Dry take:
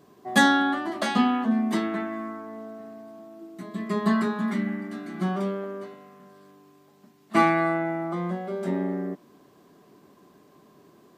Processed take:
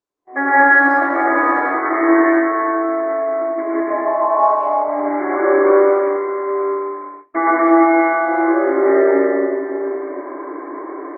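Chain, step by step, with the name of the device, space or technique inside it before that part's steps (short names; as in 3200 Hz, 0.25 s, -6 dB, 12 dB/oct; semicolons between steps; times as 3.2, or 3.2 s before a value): FFT band-pass 260–2300 Hz; 3.8–4.88 EQ curve 140 Hz 0 dB, 390 Hz -17 dB, 570 Hz +8 dB, 850 Hz +10 dB, 1700 Hz -27 dB, 2600 Hz -9 dB, 3900 Hz -5 dB, 6600 Hz -9 dB, 12000 Hz -29 dB; plate-style reverb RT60 2 s, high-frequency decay 0.95×, pre-delay 0.105 s, DRR -8 dB; speakerphone in a meeting room (reverb RT60 0.85 s, pre-delay 75 ms, DRR -1 dB; speakerphone echo 0.19 s, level -28 dB; AGC gain up to 16.5 dB; gate -33 dBFS, range -32 dB; gain -1 dB; Opus 20 kbps 48000 Hz)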